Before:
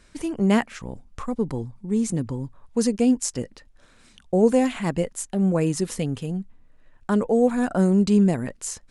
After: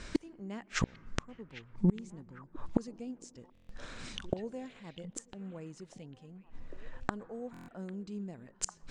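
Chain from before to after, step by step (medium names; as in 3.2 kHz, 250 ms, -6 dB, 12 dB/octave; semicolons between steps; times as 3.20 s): low-pass 7.5 kHz 24 dB/octave; inverted gate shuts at -25 dBFS, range -33 dB; repeats whose band climbs or falls 799 ms, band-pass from 2.7 kHz, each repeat -1.4 oct, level -10.5 dB; on a send at -23.5 dB: reverberation RT60 1.9 s, pre-delay 103 ms; on the sum: buffer glitch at 3.53/7.52 s, samples 1024, times 6; trim +9.5 dB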